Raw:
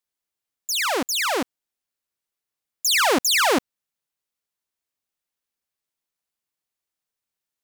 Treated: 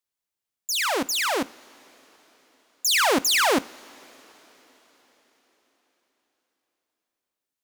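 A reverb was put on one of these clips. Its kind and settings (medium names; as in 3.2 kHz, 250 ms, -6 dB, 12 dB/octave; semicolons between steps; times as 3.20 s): two-slope reverb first 0.34 s, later 4.8 s, from -18 dB, DRR 16 dB; trim -1.5 dB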